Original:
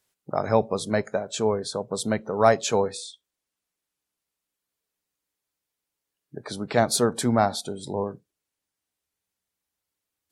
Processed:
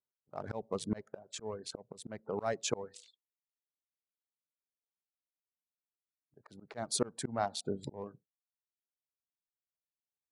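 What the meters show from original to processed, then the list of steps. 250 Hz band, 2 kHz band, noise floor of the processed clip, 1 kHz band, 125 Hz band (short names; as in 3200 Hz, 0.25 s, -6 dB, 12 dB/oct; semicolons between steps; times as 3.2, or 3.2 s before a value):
-14.0 dB, -16.0 dB, under -85 dBFS, -15.5 dB, -14.0 dB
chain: Wiener smoothing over 15 samples; gate with hold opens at -39 dBFS; reverb removal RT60 0.54 s; auto swell 0.653 s; brick-wall FIR low-pass 11000 Hz; gain +1 dB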